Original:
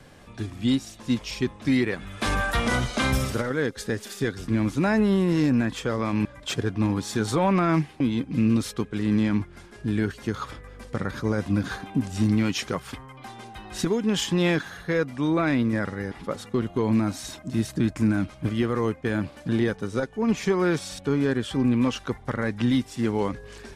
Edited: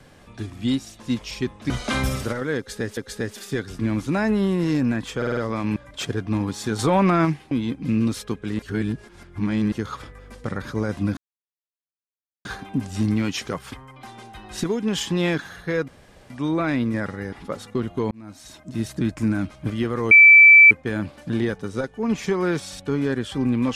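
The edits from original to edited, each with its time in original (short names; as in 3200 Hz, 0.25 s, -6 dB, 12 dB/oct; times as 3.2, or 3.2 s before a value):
1.7–2.79 cut
3.66–4.06 loop, 2 plays
5.86 stutter 0.05 s, 5 plays
7.28–7.74 gain +3.5 dB
9.08–10.21 reverse
11.66 insert silence 1.28 s
15.09 insert room tone 0.42 s
16.9–17.71 fade in
18.9 add tone 2320 Hz -6 dBFS 0.60 s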